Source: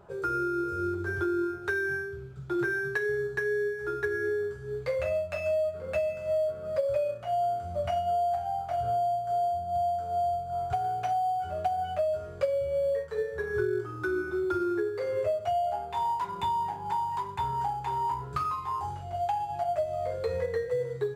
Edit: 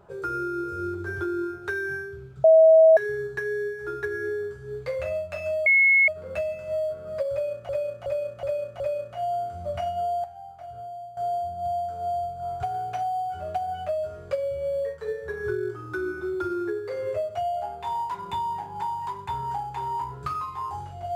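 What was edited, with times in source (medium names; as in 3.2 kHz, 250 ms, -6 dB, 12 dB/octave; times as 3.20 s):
2.44–2.97 s: bleep 643 Hz -10.5 dBFS
5.66 s: add tone 2.18 kHz -14.5 dBFS 0.42 s
6.90–7.27 s: loop, 5 plays
8.34–9.27 s: gain -10.5 dB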